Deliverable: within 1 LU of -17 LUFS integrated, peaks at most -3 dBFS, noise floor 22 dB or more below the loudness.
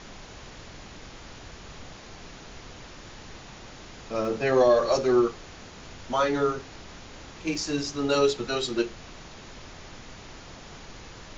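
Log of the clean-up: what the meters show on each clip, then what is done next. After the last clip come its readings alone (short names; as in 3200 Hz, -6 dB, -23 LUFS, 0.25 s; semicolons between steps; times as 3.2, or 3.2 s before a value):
dropouts 2; longest dropout 1.4 ms; noise floor -46 dBFS; noise floor target -48 dBFS; loudness -25.5 LUFS; peak -10.0 dBFS; loudness target -17.0 LUFS
-> interpolate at 4.25/7.55, 1.4 ms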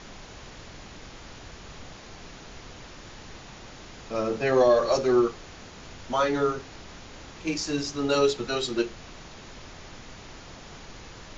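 dropouts 0; noise floor -46 dBFS; noise floor target -48 dBFS
-> noise print and reduce 6 dB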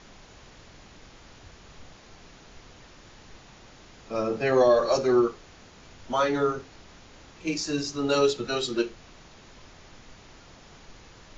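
noise floor -52 dBFS; loudness -25.5 LUFS; peak -10.0 dBFS; loudness target -17.0 LUFS
-> gain +8.5 dB; limiter -3 dBFS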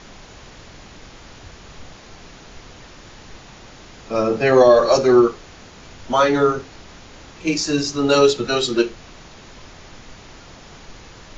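loudness -17.0 LUFS; peak -3.0 dBFS; noise floor -43 dBFS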